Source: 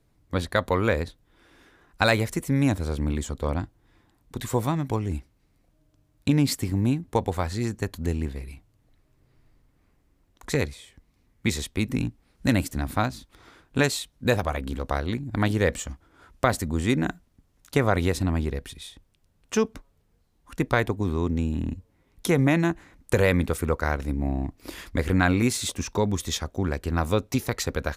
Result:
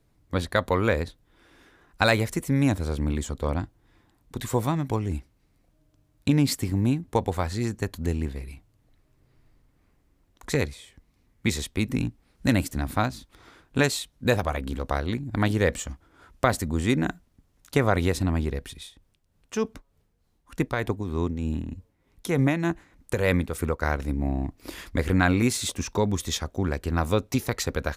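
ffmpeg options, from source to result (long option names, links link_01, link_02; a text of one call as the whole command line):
ffmpeg -i in.wav -filter_complex "[0:a]asplit=3[link_01][link_02][link_03];[link_01]afade=type=out:start_time=18.82:duration=0.02[link_04];[link_02]tremolo=f=3.3:d=0.51,afade=type=in:start_time=18.82:duration=0.02,afade=type=out:start_time=23.8:duration=0.02[link_05];[link_03]afade=type=in:start_time=23.8:duration=0.02[link_06];[link_04][link_05][link_06]amix=inputs=3:normalize=0" out.wav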